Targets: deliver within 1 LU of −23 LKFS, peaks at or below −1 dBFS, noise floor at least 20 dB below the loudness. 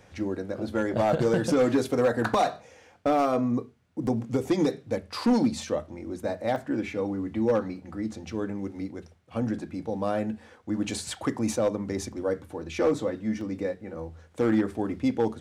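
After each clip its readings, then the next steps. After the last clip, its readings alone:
share of clipped samples 0.8%; peaks flattened at −16.5 dBFS; number of dropouts 3; longest dropout 1.7 ms; integrated loudness −28.0 LKFS; sample peak −16.5 dBFS; target loudness −23.0 LKFS
→ clipped peaks rebuilt −16.5 dBFS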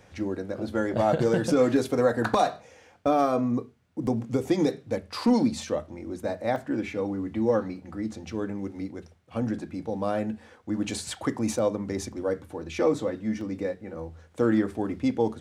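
share of clipped samples 0.0%; number of dropouts 3; longest dropout 1.7 ms
→ repair the gap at 0:04.07/0:06.56/0:13.41, 1.7 ms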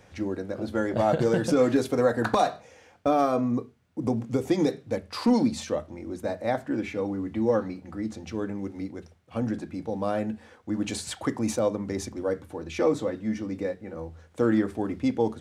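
number of dropouts 0; integrated loudness −27.5 LKFS; sample peak −9.5 dBFS; target loudness −23.0 LKFS
→ level +4.5 dB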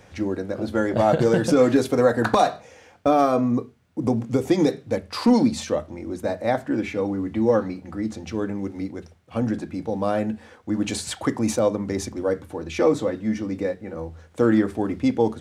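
integrated loudness −23.0 LKFS; sample peak −5.0 dBFS; background noise floor −51 dBFS

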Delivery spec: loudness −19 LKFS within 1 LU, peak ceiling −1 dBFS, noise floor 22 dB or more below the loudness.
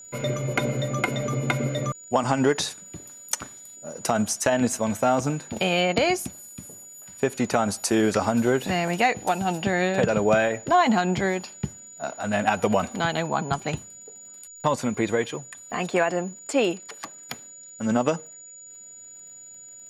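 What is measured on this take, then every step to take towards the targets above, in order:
crackle rate 47 per second; interfering tone 6,900 Hz; level of the tone −42 dBFS; integrated loudness −24.5 LKFS; sample peak −5.0 dBFS; target loudness −19.0 LKFS
→ click removal
notch filter 6,900 Hz, Q 30
level +5.5 dB
brickwall limiter −1 dBFS

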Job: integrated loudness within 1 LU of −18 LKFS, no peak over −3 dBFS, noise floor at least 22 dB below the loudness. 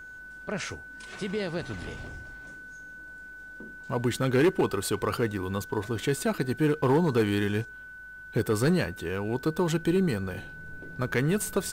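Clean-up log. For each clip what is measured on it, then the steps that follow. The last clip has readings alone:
share of clipped samples 0.5%; peaks flattened at −17.0 dBFS; interfering tone 1,500 Hz; level of the tone −42 dBFS; integrated loudness −28.0 LKFS; sample peak −17.0 dBFS; target loudness −18.0 LKFS
→ clipped peaks rebuilt −17 dBFS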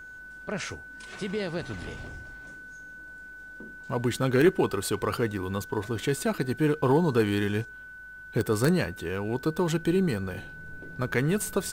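share of clipped samples 0.0%; interfering tone 1,500 Hz; level of the tone −42 dBFS
→ notch filter 1,500 Hz, Q 30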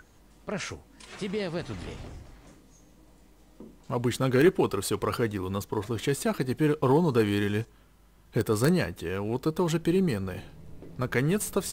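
interfering tone none found; integrated loudness −28.0 LKFS; sample peak −8.0 dBFS; target loudness −18.0 LKFS
→ level +10 dB
brickwall limiter −3 dBFS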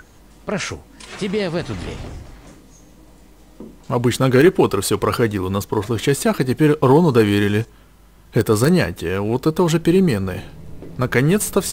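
integrated loudness −18.0 LKFS; sample peak −3.0 dBFS; background noise floor −47 dBFS

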